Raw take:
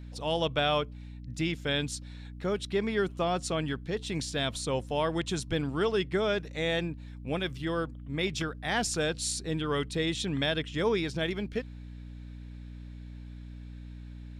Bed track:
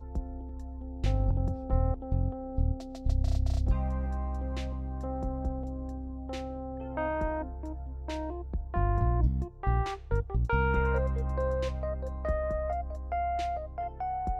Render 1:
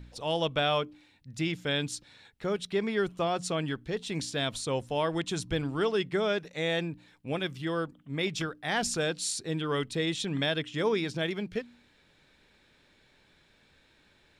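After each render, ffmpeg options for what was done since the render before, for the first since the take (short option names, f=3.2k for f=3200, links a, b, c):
-af "bandreject=f=60:t=h:w=4,bandreject=f=120:t=h:w=4,bandreject=f=180:t=h:w=4,bandreject=f=240:t=h:w=4,bandreject=f=300:t=h:w=4"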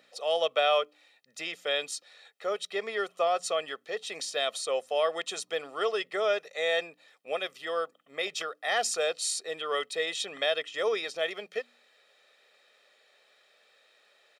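-af "highpass=f=370:w=0.5412,highpass=f=370:w=1.3066,aecho=1:1:1.6:0.72"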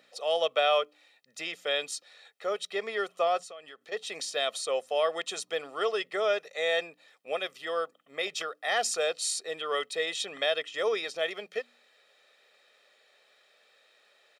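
-filter_complex "[0:a]asettb=1/sr,asplit=3[a][b][c];[a]atrim=end=3.414[d];[b]atrim=start=3.41:end=3.92,asetpts=PTS-STARTPTS,afade=t=in:d=0.004:c=qsin,afade=t=out:st=0.506:d=0.004:c=qsin,acompressor=threshold=-47dB:ratio=3:attack=3.2:release=140:knee=1:detection=peak[e];[c]atrim=start=3.916[f];[d][e]acrossfade=d=0.004:c1=hsin:c2=qsin[g];[g][f]acrossfade=d=0.004:c1=qsin:c2=hsin"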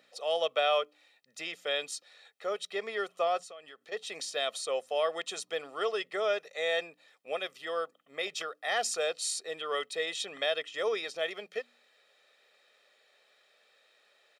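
-af "volume=-2.5dB"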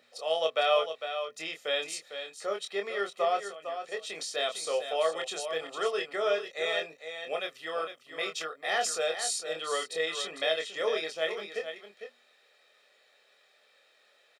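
-filter_complex "[0:a]asplit=2[a][b];[b]adelay=25,volume=-5dB[c];[a][c]amix=inputs=2:normalize=0,aecho=1:1:453:0.355"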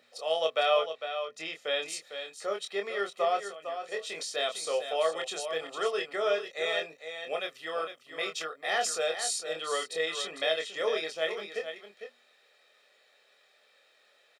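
-filter_complex "[0:a]asettb=1/sr,asplit=3[a][b][c];[a]atrim=end=0.704[d];[b]atrim=start=0.7:end=1.86,asetpts=PTS-STARTPTS,afade=t=in:d=0.004:c=qsin,afade=t=out:st=1.156:d=0.004:c=qsin,highshelf=f=10k:g=-11.5[e];[c]atrim=start=1.856[f];[d][e]acrossfade=d=0.004:c1=hsin:c2=qsin[g];[g][f]acrossfade=d=0.004:c1=qsin:c2=hsin,asettb=1/sr,asplit=3[h][i][j];[h]atrim=end=3.814[k];[i]atrim=start=3.81:end=4.23,asetpts=PTS-STARTPTS,afade=t=in:d=0.004:c=qsin,afade=t=out:st=0.416:d=0.004:c=qsin,asplit=2[l][m];[m]adelay=23,volume=-7.5dB[n];[l][n]amix=inputs=2:normalize=0,atrim=end_sample=18522[o];[j]atrim=start=4.226[p];[k][o]acrossfade=d=0.004:c1=hsin:c2=qsin[q];[q][p]acrossfade=d=0.004:c1=qsin:c2=hsin"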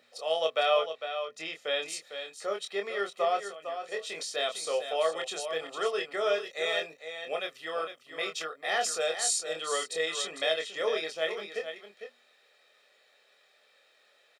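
-filter_complex "[0:a]asettb=1/sr,asplit=3[a][b][c];[a]atrim=end=6.174[d];[b]atrim=start=6.17:end=6.94,asetpts=PTS-STARTPTS,afade=t=in:d=0.004:c=qsin,afade=t=out:st=0.766:d=0.004:c=qsin,highshelf=f=5.3k:g=4[e];[c]atrim=start=6.936[f];[d][e]acrossfade=d=0.004:c1=hsin:c2=qsin[g];[g][f]acrossfade=d=0.004:c1=qsin:c2=hsin,asettb=1/sr,asplit=3[h][i][j];[h]atrim=end=9.004[k];[i]atrim=start=9:end=10.54,asetpts=PTS-STARTPTS,afade=t=in:d=0.004:c=qsin,afade=t=out:st=1.536:d=0.004:c=qsin,equalizer=f=7.4k:w=1.5:g=5.5[l];[j]atrim=start=10.536[m];[k][l]acrossfade=d=0.004:c1=hsin:c2=qsin[n];[n][m]acrossfade=d=0.004:c1=qsin:c2=hsin"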